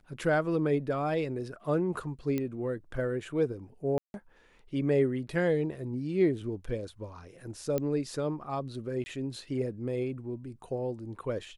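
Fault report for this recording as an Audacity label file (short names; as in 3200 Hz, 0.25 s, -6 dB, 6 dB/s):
2.380000	2.380000	pop -19 dBFS
3.980000	4.140000	gap 0.161 s
7.780000	7.780000	pop -17 dBFS
9.040000	9.060000	gap 20 ms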